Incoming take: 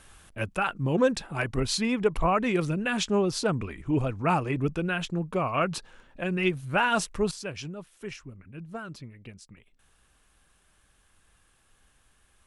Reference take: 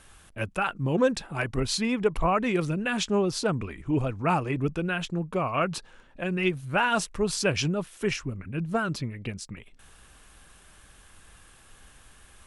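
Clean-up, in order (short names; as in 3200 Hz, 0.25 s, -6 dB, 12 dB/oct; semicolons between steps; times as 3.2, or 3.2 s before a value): gain 0 dB, from 7.31 s +11 dB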